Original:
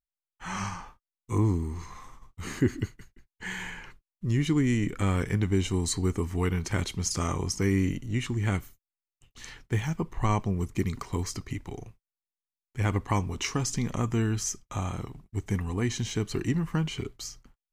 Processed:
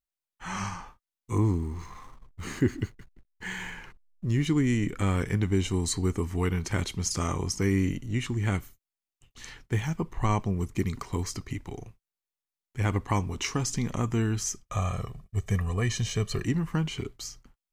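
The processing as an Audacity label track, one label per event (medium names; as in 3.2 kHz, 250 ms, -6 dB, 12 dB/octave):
1.450000	4.460000	hysteresis with a dead band play -52 dBFS
14.660000	16.450000	comb 1.7 ms, depth 73%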